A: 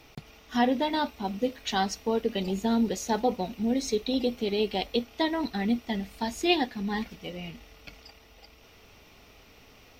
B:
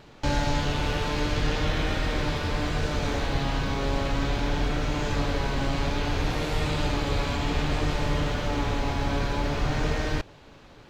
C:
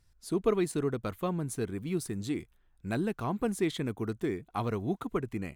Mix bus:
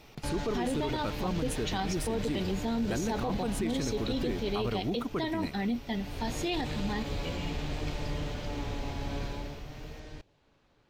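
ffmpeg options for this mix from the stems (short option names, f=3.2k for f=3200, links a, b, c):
-filter_complex "[0:a]volume=-2dB[a];[1:a]adynamicequalizer=threshold=0.00447:dfrequency=1300:dqfactor=1.3:tfrequency=1300:tqfactor=1.3:attack=5:release=100:ratio=0.375:range=3:mode=cutabove:tftype=bell,volume=3.5dB,afade=t=out:st=4.29:d=0.73:silence=0.266073,afade=t=in:st=5.93:d=0.43:silence=0.237137,afade=t=out:st=9.26:d=0.38:silence=0.334965[b];[2:a]volume=1dB[c];[a][b][c]amix=inputs=3:normalize=0,alimiter=limit=-23dB:level=0:latency=1:release=26"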